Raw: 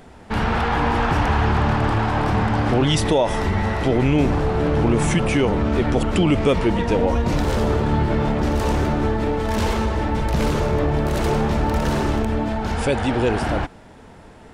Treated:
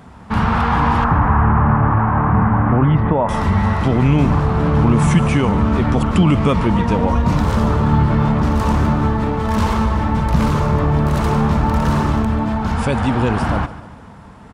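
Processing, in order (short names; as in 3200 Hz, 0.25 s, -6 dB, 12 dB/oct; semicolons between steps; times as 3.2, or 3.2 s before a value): HPF 44 Hz; resonant low shelf 270 Hz +6.5 dB, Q 1.5; 1.04–3.29 LPF 1900 Hz 24 dB/oct; bell 1100 Hz +10 dB 0.72 oct; feedback echo 0.143 s, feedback 51%, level -16 dB; gain -1 dB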